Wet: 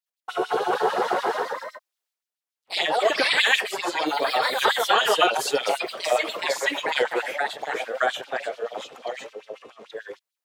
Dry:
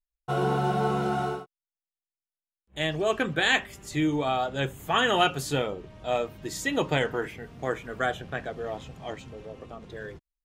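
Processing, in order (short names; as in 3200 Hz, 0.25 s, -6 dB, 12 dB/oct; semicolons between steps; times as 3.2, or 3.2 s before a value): transient shaper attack +2 dB, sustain +8 dB; LFO high-pass sine 6.8 Hz 400–4200 Hz; echoes that change speed 0.253 s, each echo +2 st, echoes 3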